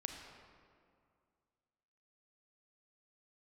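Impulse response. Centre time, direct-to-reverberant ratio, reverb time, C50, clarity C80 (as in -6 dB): 60 ms, 3.0 dB, 2.2 s, 4.0 dB, 5.0 dB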